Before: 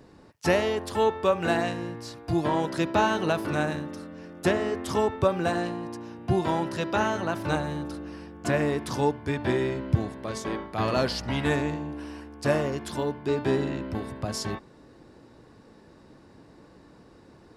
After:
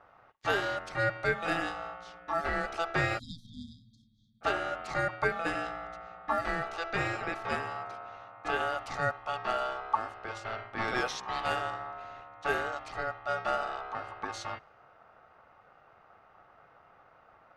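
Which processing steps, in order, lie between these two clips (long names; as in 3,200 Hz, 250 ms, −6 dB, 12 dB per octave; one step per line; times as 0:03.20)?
ring modulation 1,000 Hz
time-frequency box erased 0:03.19–0:04.42, 300–3,200 Hz
low-pass that shuts in the quiet parts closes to 2,500 Hz, open at −22.5 dBFS
level −3.5 dB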